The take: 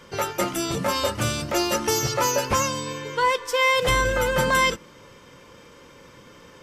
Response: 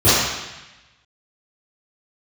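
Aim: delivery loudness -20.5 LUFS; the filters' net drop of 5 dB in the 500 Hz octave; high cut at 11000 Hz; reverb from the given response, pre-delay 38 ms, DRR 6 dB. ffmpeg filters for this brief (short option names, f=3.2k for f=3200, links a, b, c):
-filter_complex "[0:a]lowpass=11k,equalizer=f=500:t=o:g=-5.5,asplit=2[a][b];[1:a]atrim=start_sample=2205,adelay=38[c];[b][c]afir=irnorm=-1:irlink=0,volume=-31.5dB[d];[a][d]amix=inputs=2:normalize=0,volume=2dB"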